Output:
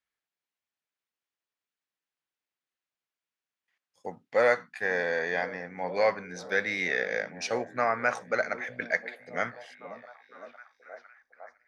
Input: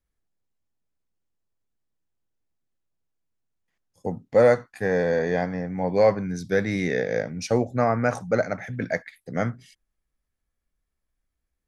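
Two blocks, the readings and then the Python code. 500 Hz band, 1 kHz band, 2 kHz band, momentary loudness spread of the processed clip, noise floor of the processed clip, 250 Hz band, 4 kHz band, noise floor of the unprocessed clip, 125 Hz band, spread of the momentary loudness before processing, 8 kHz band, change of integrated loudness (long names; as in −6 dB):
−7.0 dB, −2.5 dB, +2.5 dB, 21 LU, below −85 dBFS, −14.0 dB, +0.5 dB, −81 dBFS, −18.5 dB, 11 LU, −3.5 dB, −5.0 dB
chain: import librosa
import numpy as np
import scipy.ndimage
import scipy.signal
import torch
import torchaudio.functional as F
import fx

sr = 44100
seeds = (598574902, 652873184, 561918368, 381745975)

y = fx.echo_stepped(x, sr, ms=507, hz=210.0, octaves=0.7, feedback_pct=70, wet_db=-9.5)
y = fx.filter_sweep_bandpass(y, sr, from_hz=2300.0, to_hz=600.0, start_s=10.73, end_s=11.64, q=0.8)
y = y * 10.0 ** (3.5 / 20.0)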